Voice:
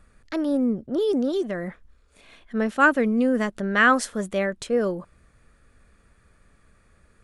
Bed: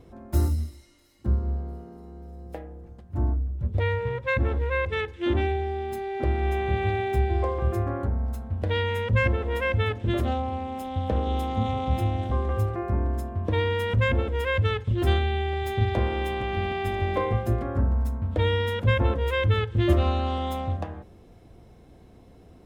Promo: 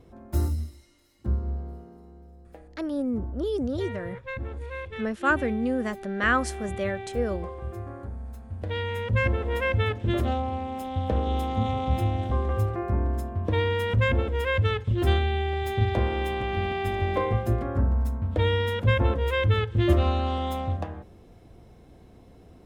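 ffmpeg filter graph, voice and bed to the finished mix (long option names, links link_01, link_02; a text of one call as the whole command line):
ffmpeg -i stem1.wav -i stem2.wav -filter_complex "[0:a]adelay=2450,volume=-5.5dB[link_01];[1:a]volume=7.5dB,afade=type=out:start_time=1.7:duration=0.79:silence=0.421697,afade=type=in:start_time=8.25:duration=1.26:silence=0.316228[link_02];[link_01][link_02]amix=inputs=2:normalize=0" out.wav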